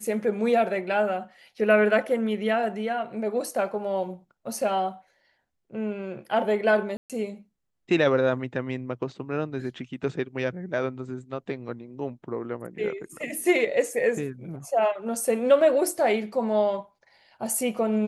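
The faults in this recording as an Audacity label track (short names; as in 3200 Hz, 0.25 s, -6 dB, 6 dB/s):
6.970000	7.100000	gap 0.127 s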